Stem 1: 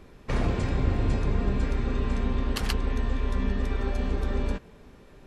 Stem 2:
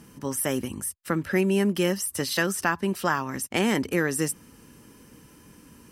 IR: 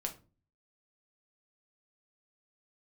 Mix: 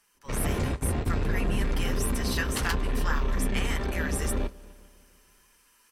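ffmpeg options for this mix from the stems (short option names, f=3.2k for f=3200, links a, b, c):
-filter_complex "[0:a]asoftclip=type=tanh:threshold=-25.5dB,flanger=delay=5.3:depth=9.7:regen=-47:speed=0.62:shape=sinusoidal,volume=2dB,asplit=2[a][b];[b]volume=-22.5dB[c];[1:a]highpass=1.1k,flanger=delay=4.3:depth=4.9:regen=-24:speed=1.8:shape=sinusoidal,volume=-6.5dB,asplit=2[d][e];[e]apad=whole_len=232321[f];[a][f]sidechaingate=range=-33dB:threshold=-57dB:ratio=16:detection=peak[g];[c]aecho=0:1:148|296|444|592|740|888|1036|1184|1332:1|0.58|0.336|0.195|0.113|0.0656|0.0381|0.0221|0.0128[h];[g][d][h]amix=inputs=3:normalize=0,dynaudnorm=f=150:g=5:m=5.5dB"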